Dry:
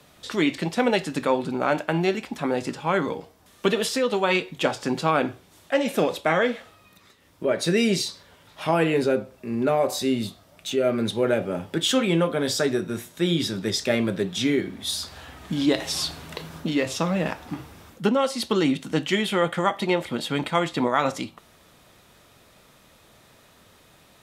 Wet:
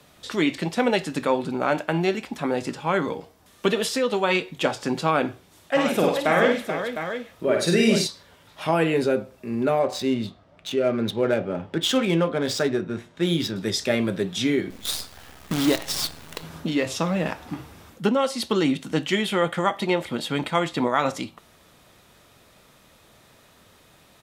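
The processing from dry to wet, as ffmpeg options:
ffmpeg -i in.wav -filter_complex "[0:a]asplit=3[link_01][link_02][link_03];[link_01]afade=type=out:start_time=5.75:duration=0.02[link_04];[link_02]aecho=1:1:53|96|434|707:0.708|0.355|0.398|0.376,afade=type=in:start_time=5.75:duration=0.02,afade=type=out:start_time=8.06:duration=0.02[link_05];[link_03]afade=type=in:start_time=8.06:duration=0.02[link_06];[link_04][link_05][link_06]amix=inputs=3:normalize=0,asettb=1/sr,asplit=3[link_07][link_08][link_09];[link_07]atrim=end=9.794[link_10];[link_08]atrim=start=9.79:end=13.56,asetpts=PTS-STARTPTS,afade=type=in:duration=0.004:curve=qsin,afade=type=out:start_time=3.766:duration=0.004:curve=qsin,adynamicsmooth=sensitivity=5:basefreq=2800[link_11];[link_09]atrim=start=13.556[link_12];[link_10][link_11]acrossfade=duration=0.004:curve1=hsin:curve2=qsin[link_13];[link_13][link_12]acrossfade=duration=0.004:curve1=qsin:curve2=hsin,asettb=1/sr,asplit=3[link_14][link_15][link_16];[link_14]atrim=end=14.704[link_17];[link_15]atrim=start=14.7:end=16.43,asetpts=PTS-STARTPTS,afade=type=in:duration=0.004:curve=qsin,afade=type=out:start_time=1.726:duration=0.004:curve=qsin,acrusher=bits=5:dc=4:mix=0:aa=0.000001[link_18];[link_16]atrim=start=16.426[link_19];[link_17][link_18]acrossfade=duration=0.004:curve1=hsin:curve2=qsin[link_20];[link_20][link_19]acrossfade=duration=0.004:curve1=qsin:curve2=hsin" out.wav

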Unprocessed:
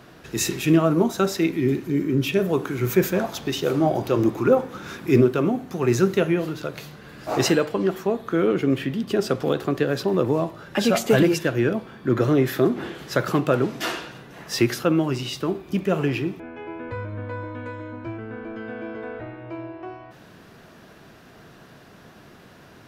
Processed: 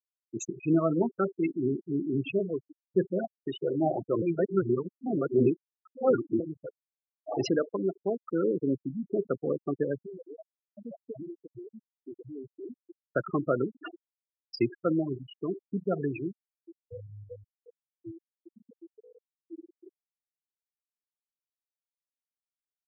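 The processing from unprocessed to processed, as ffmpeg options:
ffmpeg -i in.wav -filter_complex "[0:a]asettb=1/sr,asplit=3[link_01][link_02][link_03];[link_01]atrim=end=10.024[link_04];[link_02]atrim=start=10.02:end=12.86,asetpts=PTS-STARTPTS,afade=type=in:duration=0.004:curve=qsin,afade=type=out:start_time=2.836:duration=0.004:curve=qsin,acompressor=threshold=-32dB:ratio=3:attack=3.2:release=140:knee=1:detection=peak[link_05];[link_03]atrim=start=12.856[link_06];[link_04][link_05]acrossfade=duration=0.004:curve1=hsin:curve2=qsin[link_07];[link_07][link_06]acrossfade=duration=0.004:curve1=qsin:curve2=hsin,asplit=4[link_08][link_09][link_10][link_11];[link_08]atrim=end=2.91,asetpts=PTS-STARTPTS,afade=type=out:start_time=2.39:duration=0.52[link_12];[link_09]atrim=start=2.91:end=4.222,asetpts=PTS-STARTPTS,afade=type=in:duration=0.004:curve=hsin[link_13];[link_10]atrim=start=4.218:end=6.402,asetpts=PTS-STARTPTS,areverse[link_14];[link_11]atrim=start=6.398[link_15];[link_12][link_13]concat=n=2:v=0:a=1[link_16];[link_16][link_14]acrossfade=duration=0.004:curve1=hsin:curve2=hsin[link_17];[link_17][link_15]acrossfade=duration=0.004:curve1=hsin:curve2=hsin,afftfilt=real='re*gte(hypot(re,im),0.2)':imag='im*gte(hypot(re,im),0.2)':win_size=1024:overlap=0.75,highpass=frequency=180:poles=1,volume=-5.5dB" out.wav

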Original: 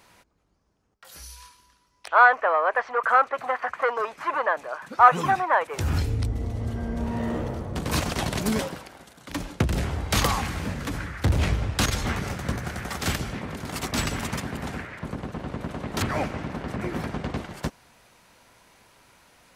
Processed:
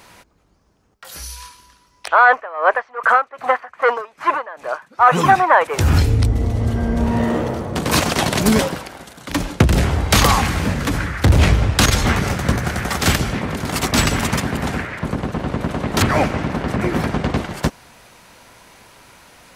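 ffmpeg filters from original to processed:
ffmpeg -i in.wav -filter_complex "[0:a]asettb=1/sr,asplit=3[link_01][link_02][link_03];[link_01]atrim=end=2.304[link_04];[link_02]atrim=start=2.3:end=5.11,asetpts=PTS-STARTPTS,afade=type=in:duration=0.004:curve=qsin,afade=type=out:start_time=2.806:duration=0.004:curve=qsin,aeval=exprs='val(0)*pow(10,-21*(0.5-0.5*cos(2*PI*2.5*n/s))/20)':channel_layout=same[link_05];[link_03]atrim=start=5.106[link_06];[link_04][link_05]acrossfade=duration=0.004:curve1=hsin:curve2=qsin[link_07];[link_07][link_06]acrossfade=duration=0.004:curve1=qsin:curve2=hsin,asettb=1/sr,asplit=3[link_08][link_09][link_10];[link_08]atrim=end=7.244[link_11];[link_09]atrim=start=7.24:end=8.39,asetpts=PTS-STARTPTS,afade=type=in:duration=0.004:curve=qsin,afade=type=out:start_time=1.146:duration=0.004:curve=qsin,highpass=frequency=160:poles=1[link_12];[link_10]atrim=start=8.386[link_13];[link_11][link_12]acrossfade=duration=0.004:curve1=hsin:curve2=qsin[link_14];[link_14][link_13]acrossfade=duration=0.004:curve1=qsin:curve2=hsin,alimiter=level_in=11.5dB:limit=-1dB:release=50:level=0:latency=1,volume=-1dB" out.wav

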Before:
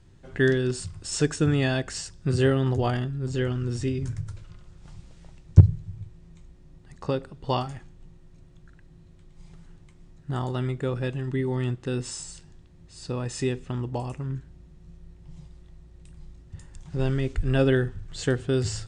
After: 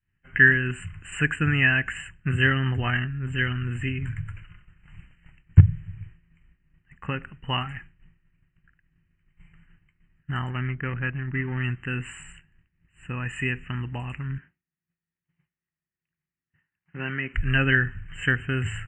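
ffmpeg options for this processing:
ffmpeg -i in.wav -filter_complex "[0:a]asettb=1/sr,asplit=3[link_01][link_02][link_03];[link_01]atrim=end=10.504[link_04];[link_02]atrim=start=10.5:end=11.64,asetpts=PTS-STARTPTS,afade=type=in:duration=0.004:curve=qsin,afade=type=out:start_time=1.136:duration=0.004:curve=qsin,adynamicsmooth=sensitivity=3.5:basefreq=900[link_05];[link_03]atrim=start=11.636[link_06];[link_04][link_05]acrossfade=duration=0.004:curve1=hsin:curve2=qsin[link_07];[link_07][link_06]acrossfade=duration=0.004:curve1=qsin:curve2=hsin,asettb=1/sr,asplit=3[link_08][link_09][link_10];[link_08]atrim=end=14.384[link_11];[link_09]atrim=start=14.38:end=17.34,asetpts=PTS-STARTPTS,afade=type=in:duration=0.004:curve=qsin,afade=type=out:start_time=2.956:duration=0.004:curve=qsin,highpass=220,lowpass=2800[link_12];[link_10]atrim=start=17.336[link_13];[link_11][link_12]acrossfade=duration=0.004:curve1=hsin:curve2=qsin[link_14];[link_14][link_13]acrossfade=duration=0.004:curve1=qsin:curve2=hsin,agate=range=-33dB:threshold=-39dB:ratio=3:detection=peak,afftfilt=real='re*(1-between(b*sr/4096,3100,7100))':imag='im*(1-between(b*sr/4096,3100,7100))':win_size=4096:overlap=0.75,firequalizer=gain_entry='entry(200,0);entry(370,-9);entry(540,-11);entry(1700,14);entry(9300,-14)':delay=0.05:min_phase=1" out.wav

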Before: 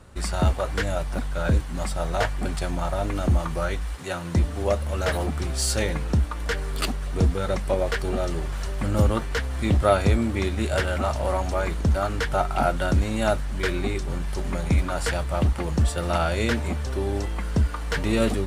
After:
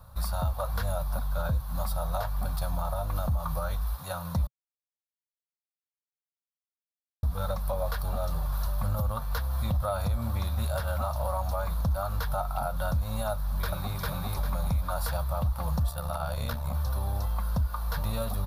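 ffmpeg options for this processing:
ffmpeg -i in.wav -filter_complex "[0:a]asplit=2[link_01][link_02];[link_02]afade=type=in:start_time=13.32:duration=0.01,afade=type=out:start_time=13.98:duration=0.01,aecho=0:1:400|800|1200|1600|2000:0.891251|0.311938|0.109178|0.0382124|0.0133743[link_03];[link_01][link_03]amix=inputs=2:normalize=0,asplit=3[link_04][link_05][link_06];[link_04]afade=type=out:start_time=15.89:duration=0.02[link_07];[link_05]tremolo=f=68:d=0.71,afade=type=in:start_time=15.89:duration=0.02,afade=type=out:start_time=16.73:duration=0.02[link_08];[link_06]afade=type=in:start_time=16.73:duration=0.02[link_09];[link_07][link_08][link_09]amix=inputs=3:normalize=0,asplit=3[link_10][link_11][link_12];[link_10]atrim=end=4.47,asetpts=PTS-STARTPTS,afade=type=out:start_time=4.466:duration=0.004:curve=hsin[link_13];[link_11]atrim=start=4.47:end=7.23,asetpts=PTS-STARTPTS,volume=0[link_14];[link_12]atrim=start=7.23,asetpts=PTS-STARTPTS,afade=type=in:duration=0.004:curve=hsin[link_15];[link_13][link_14][link_15]concat=n=3:v=0:a=1,firequalizer=gain_entry='entry(130,0);entry(360,-26);entry(540,-4);entry(1100,2);entry(2000,-17);entry(3900,-2);entry(7900,-14);entry(12000,14)':delay=0.05:min_phase=1,alimiter=limit=-20.5dB:level=0:latency=1:release=150,bandreject=frequency=3000:width=11" out.wav

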